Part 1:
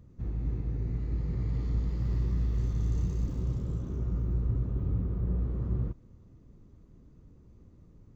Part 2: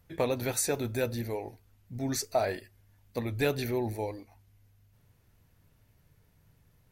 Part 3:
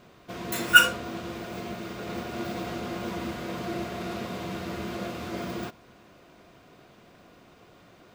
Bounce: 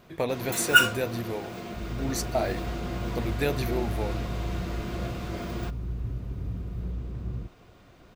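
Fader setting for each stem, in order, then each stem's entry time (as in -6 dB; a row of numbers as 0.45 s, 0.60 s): -3.5 dB, +0.5 dB, -2.0 dB; 1.55 s, 0.00 s, 0.00 s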